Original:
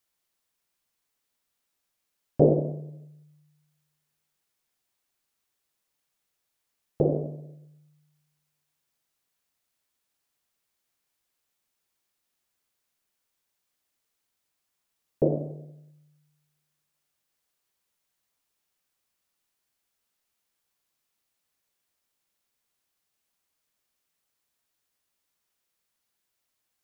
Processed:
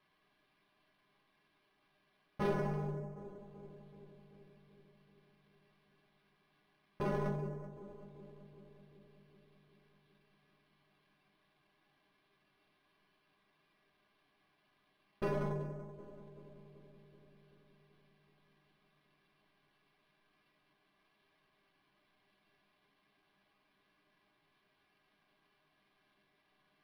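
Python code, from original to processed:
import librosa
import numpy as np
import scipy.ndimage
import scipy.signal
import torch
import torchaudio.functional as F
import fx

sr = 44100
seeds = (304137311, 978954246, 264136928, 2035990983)

p1 = fx.env_lowpass_down(x, sr, base_hz=710.0, full_db=-37.0)
p2 = fx.low_shelf(p1, sr, hz=390.0, db=4.5)
p3 = fx.over_compress(p2, sr, threshold_db=-31.0, ratio=-1.0)
p4 = p2 + (p3 * librosa.db_to_amplitude(2.5))
p5 = np.clip(10.0 ** (25.5 / 20.0) * p4, -1.0, 1.0) / 10.0 ** (25.5 / 20.0)
p6 = fx.stiff_resonator(p5, sr, f0_hz=200.0, decay_s=0.21, stiffness=0.002)
p7 = p6 + fx.echo_filtered(p6, sr, ms=382, feedback_pct=68, hz=1000.0, wet_db=-12.0, dry=0)
p8 = np.interp(np.arange(len(p7)), np.arange(len(p7))[::6], p7[::6])
y = p8 * librosa.db_to_amplitude(6.5)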